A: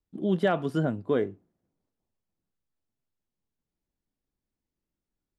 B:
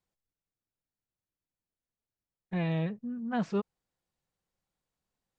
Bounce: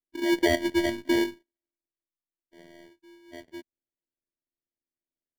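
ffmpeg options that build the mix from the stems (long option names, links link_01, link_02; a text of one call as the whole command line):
ffmpeg -i stem1.wav -i stem2.wav -filter_complex "[0:a]lowpass=2500,agate=range=-18dB:threshold=-46dB:ratio=16:detection=peak,volume=-2dB,asplit=2[link_01][link_02];[1:a]volume=-15.5dB[link_03];[link_02]apad=whole_len=237399[link_04];[link_03][link_04]sidechaincompress=threshold=-45dB:ratio=5:attack=6.8:release=1240[link_05];[link_01][link_05]amix=inputs=2:normalize=0,afftfilt=real='hypot(re,im)*cos(PI*b)':imag='0':win_size=512:overlap=0.75,acrusher=samples=34:mix=1:aa=0.000001,equalizer=frequency=125:width_type=o:width=1:gain=7,equalizer=frequency=250:width_type=o:width=1:gain=9,equalizer=frequency=500:width_type=o:width=1:gain=7,equalizer=frequency=1000:width_type=o:width=1:gain=-3,equalizer=frequency=2000:width_type=o:width=1:gain=9,equalizer=frequency=4000:width_type=o:width=1:gain=6" out.wav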